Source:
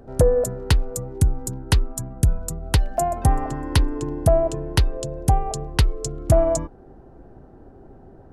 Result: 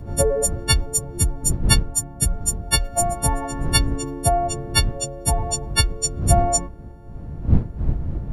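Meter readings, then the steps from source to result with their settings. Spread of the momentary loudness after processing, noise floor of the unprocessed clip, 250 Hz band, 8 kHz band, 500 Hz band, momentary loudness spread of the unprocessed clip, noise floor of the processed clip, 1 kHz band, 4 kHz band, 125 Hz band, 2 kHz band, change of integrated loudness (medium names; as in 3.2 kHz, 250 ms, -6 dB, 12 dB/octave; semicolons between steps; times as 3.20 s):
8 LU, -47 dBFS, +0.5 dB, +11.0 dB, -3.0 dB, 8 LU, -37 dBFS, +2.0 dB, +8.5 dB, -0.5 dB, +5.0 dB, +1.5 dB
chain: partials quantised in pitch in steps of 4 st; wind noise 100 Hz -24 dBFS; trim -1.5 dB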